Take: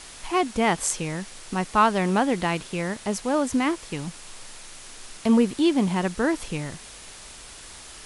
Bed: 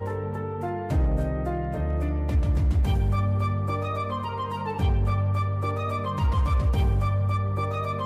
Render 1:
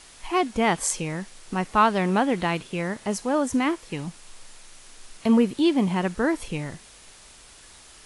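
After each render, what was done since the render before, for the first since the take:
noise reduction from a noise print 6 dB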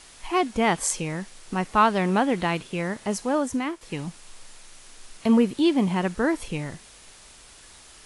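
0:03.31–0:03.81: fade out, to −9 dB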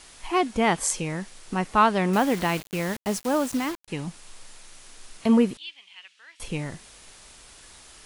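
0:02.13–0:03.88: bit-depth reduction 6 bits, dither none
0:05.57–0:06.40: four-pole ladder band-pass 3,300 Hz, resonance 50%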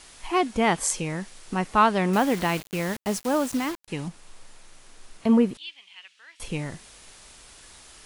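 0:04.08–0:05.55: high-shelf EQ 2,000 Hz −6.5 dB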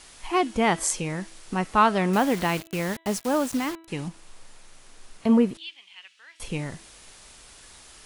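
hum removal 327.9 Hz, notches 12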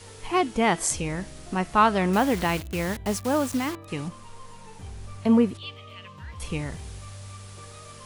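mix in bed −17.5 dB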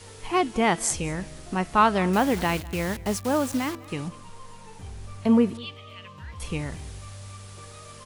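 single-tap delay 201 ms −22 dB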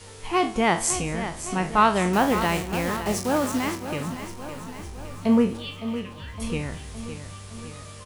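peak hold with a decay on every bin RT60 0.33 s
repeating echo 562 ms, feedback 59%, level −11 dB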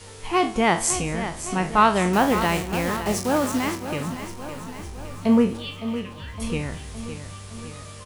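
level +1.5 dB

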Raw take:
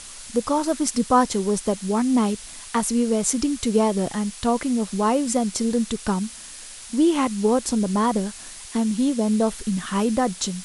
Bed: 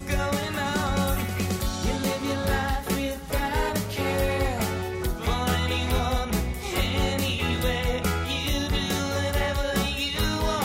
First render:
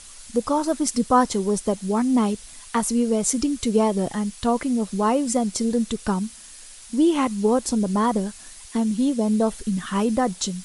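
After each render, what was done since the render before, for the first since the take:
broadband denoise 6 dB, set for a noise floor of −40 dBFS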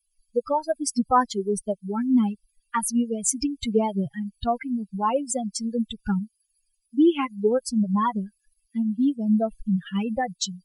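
spectral dynamics exaggerated over time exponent 3
in parallel at −1 dB: brickwall limiter −21.5 dBFS, peak gain reduction 11.5 dB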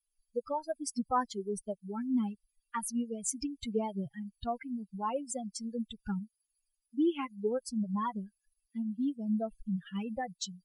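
level −10.5 dB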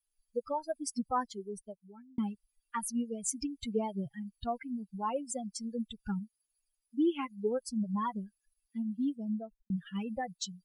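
0:00.91–0:02.18: fade out
0:09.09–0:09.70: fade out and dull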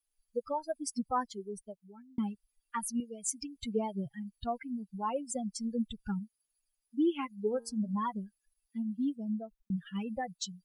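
0:03.00–0:03.56: low-shelf EQ 450 Hz −9.5 dB
0:05.35–0:06.05: low-shelf EQ 190 Hz +9 dB
0:07.41–0:07.97: hum removal 115.2 Hz, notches 23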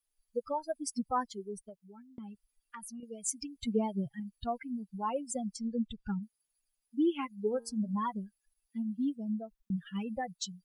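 0:01.61–0:03.03: downward compressor 8 to 1, threshold −42 dBFS
0:03.61–0:04.20: dynamic equaliser 240 Hz, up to +5 dB, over −44 dBFS, Q 2.2
0:05.56–0:06.23: high-frequency loss of the air 89 metres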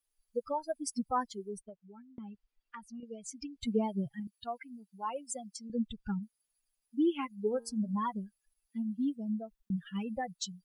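0:01.61–0:03.60: low-pass filter 2,800 Hz → 4,800 Hz
0:04.27–0:05.70: high-pass filter 790 Hz 6 dB per octave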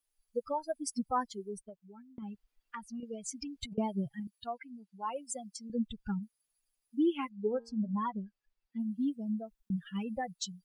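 0:02.22–0:03.78: compressor whose output falls as the input rises −41 dBFS
0:04.47–0:05.08: high-frequency loss of the air 58 metres
0:07.29–0:08.80: high-frequency loss of the air 170 metres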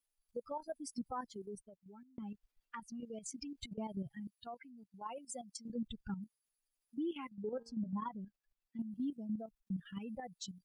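output level in coarse steps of 11 dB
brickwall limiter −32.5 dBFS, peak gain reduction 7.5 dB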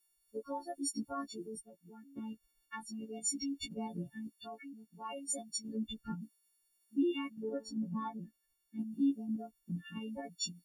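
every partial snapped to a pitch grid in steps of 4 semitones
hollow resonant body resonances 300/2,900 Hz, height 11 dB, ringing for 45 ms

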